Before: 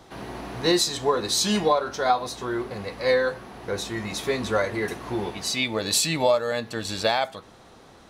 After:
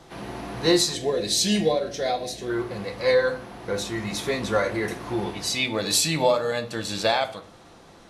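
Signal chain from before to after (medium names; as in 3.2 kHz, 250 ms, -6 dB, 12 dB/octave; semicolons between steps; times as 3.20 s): 0.94–2.50 s: high-order bell 1.1 kHz -15 dB 1 oct; simulated room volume 630 m³, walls furnished, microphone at 0.8 m; Vorbis 48 kbps 32 kHz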